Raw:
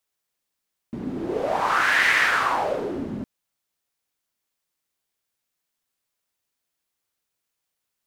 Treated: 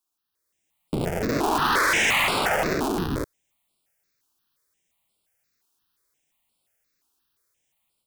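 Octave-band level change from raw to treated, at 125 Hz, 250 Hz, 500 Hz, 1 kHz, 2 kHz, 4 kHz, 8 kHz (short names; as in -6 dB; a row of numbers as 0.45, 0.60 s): +8.0, +3.5, +1.0, -0.5, -2.5, +3.0, +7.5 dB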